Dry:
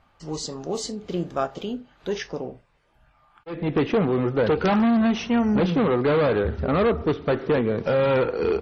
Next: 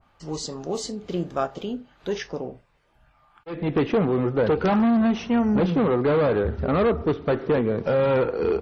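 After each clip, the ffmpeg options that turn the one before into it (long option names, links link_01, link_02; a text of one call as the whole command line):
ffmpeg -i in.wav -af "adynamicequalizer=threshold=0.0126:dfrequency=1600:dqfactor=0.7:tfrequency=1600:tqfactor=0.7:attack=5:release=100:ratio=0.375:range=2.5:mode=cutabove:tftype=highshelf" out.wav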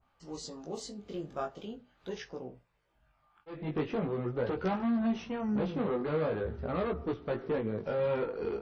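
ffmpeg -i in.wav -af "flanger=delay=16:depth=4.2:speed=0.43,volume=-8dB" out.wav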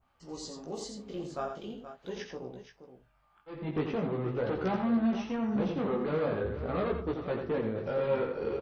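ffmpeg -i in.wav -af "aecho=1:1:86|125|475:0.473|0.106|0.266" out.wav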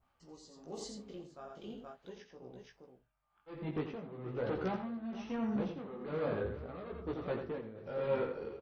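ffmpeg -i in.wav -af "tremolo=f=1.1:d=0.75,volume=-3.5dB" out.wav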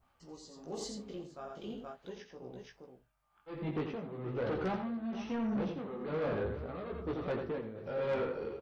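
ffmpeg -i in.wav -af "asoftclip=type=tanh:threshold=-32.5dB,volume=4dB" out.wav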